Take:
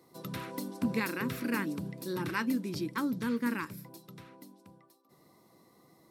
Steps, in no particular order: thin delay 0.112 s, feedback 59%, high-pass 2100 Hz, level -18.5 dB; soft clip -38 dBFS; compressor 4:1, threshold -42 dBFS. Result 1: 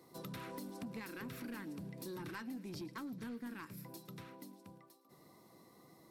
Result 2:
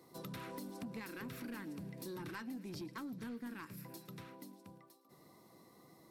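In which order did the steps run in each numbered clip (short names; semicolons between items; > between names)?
compressor > thin delay > soft clip; thin delay > compressor > soft clip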